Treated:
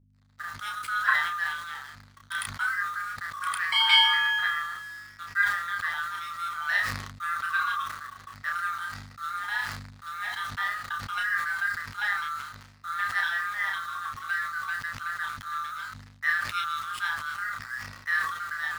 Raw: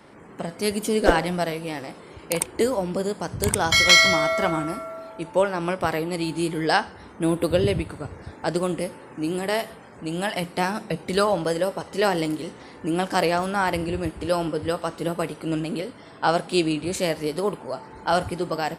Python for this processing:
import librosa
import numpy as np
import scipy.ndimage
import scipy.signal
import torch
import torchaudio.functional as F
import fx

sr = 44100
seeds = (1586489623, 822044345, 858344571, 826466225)

p1 = fx.band_swap(x, sr, width_hz=1000)
p2 = np.convolve(p1, np.full(7, 1.0 / 7))[:len(p1)]
p3 = fx.peak_eq(p2, sr, hz=1400.0, db=-7.0, octaves=0.25)
p4 = fx.quant_dither(p3, sr, seeds[0], bits=6, dither='none')
p5 = p3 + (p4 * librosa.db_to_amplitude(-9.5))
p6 = scipy.signal.sosfilt(scipy.signal.butter(6, 920.0, 'highpass', fs=sr, output='sos'), p5)
p7 = np.sign(p6) * np.maximum(np.abs(p6) - 10.0 ** (-44.0 / 20.0), 0.0)
p8 = fx.add_hum(p7, sr, base_hz=50, snr_db=29)
p9 = fx.room_early_taps(p8, sr, ms=(10, 32), db=(-10.5, -3.5))
p10 = fx.sustainer(p9, sr, db_per_s=58.0)
y = p10 * librosa.db_to_amplitude(-6.5)